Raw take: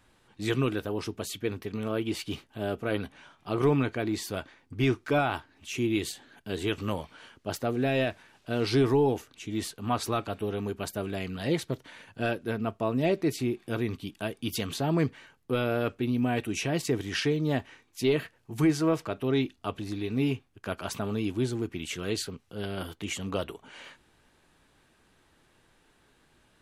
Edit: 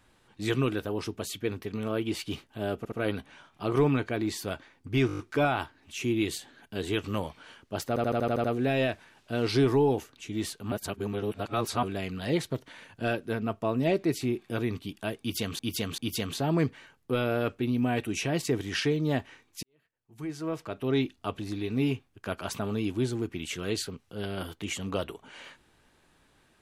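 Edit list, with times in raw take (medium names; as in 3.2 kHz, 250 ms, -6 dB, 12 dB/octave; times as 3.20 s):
2.78 s: stutter 0.07 s, 3 plays
4.93 s: stutter 0.02 s, 7 plays
7.62 s: stutter 0.08 s, 8 plays
9.90–11.01 s: reverse
14.38–14.77 s: loop, 3 plays
18.03–19.35 s: fade in quadratic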